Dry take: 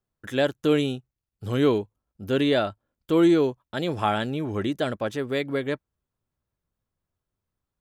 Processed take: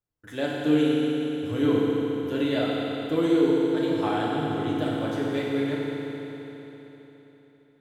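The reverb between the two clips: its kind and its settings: FDN reverb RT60 3.8 s, high-frequency decay 0.95×, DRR -6 dB; trim -9 dB

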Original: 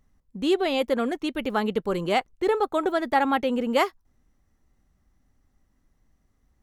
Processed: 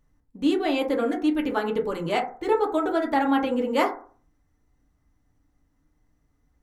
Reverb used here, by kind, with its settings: FDN reverb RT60 0.44 s, low-frequency decay 1×, high-frequency decay 0.3×, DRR 0 dB; trim -3.5 dB

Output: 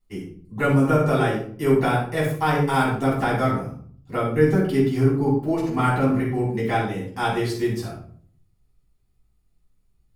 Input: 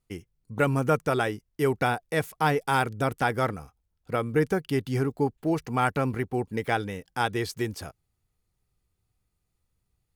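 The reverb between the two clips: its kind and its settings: simulated room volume 630 m³, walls furnished, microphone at 9.5 m; trim -8.5 dB

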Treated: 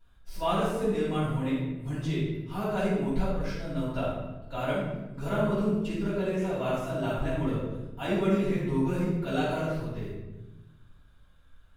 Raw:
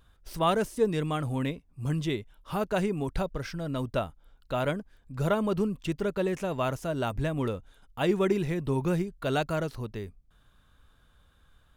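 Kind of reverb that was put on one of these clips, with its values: simulated room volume 490 m³, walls mixed, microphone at 7.4 m; trim -16 dB

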